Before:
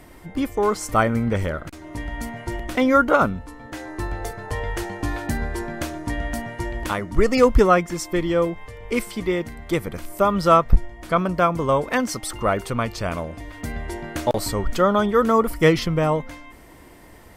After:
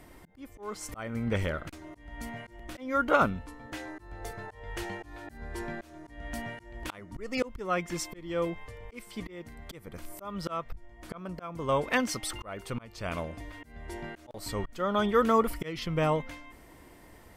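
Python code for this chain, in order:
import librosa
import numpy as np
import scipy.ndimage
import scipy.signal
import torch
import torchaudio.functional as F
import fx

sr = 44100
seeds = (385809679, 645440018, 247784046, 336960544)

y = fx.auto_swell(x, sr, attack_ms=405.0)
y = fx.dynamic_eq(y, sr, hz=2800.0, q=1.1, threshold_db=-45.0, ratio=4.0, max_db=6)
y = y * 10.0 ** (-6.5 / 20.0)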